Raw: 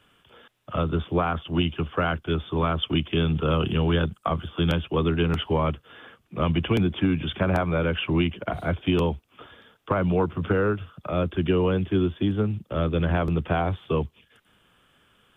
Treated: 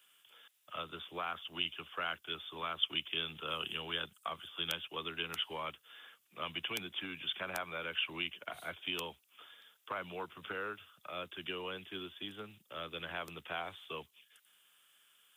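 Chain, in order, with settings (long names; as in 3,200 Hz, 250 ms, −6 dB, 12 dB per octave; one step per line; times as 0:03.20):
first difference
level +3.5 dB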